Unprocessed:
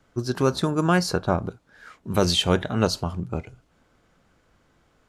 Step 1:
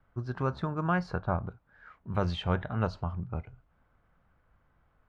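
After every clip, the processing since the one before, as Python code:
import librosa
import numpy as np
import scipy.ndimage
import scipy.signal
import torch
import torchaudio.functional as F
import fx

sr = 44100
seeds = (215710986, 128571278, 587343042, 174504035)

y = scipy.signal.sosfilt(scipy.signal.butter(2, 1300.0, 'lowpass', fs=sr, output='sos'), x)
y = fx.peak_eq(y, sr, hz=340.0, db=-13.5, octaves=2.2)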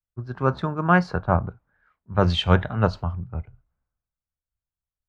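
y = fx.band_widen(x, sr, depth_pct=100)
y = y * librosa.db_to_amplitude(7.0)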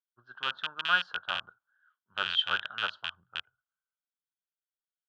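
y = fx.rattle_buzz(x, sr, strikes_db=-24.0, level_db=-7.0)
y = fx.double_bandpass(y, sr, hz=2200.0, octaves=1.1)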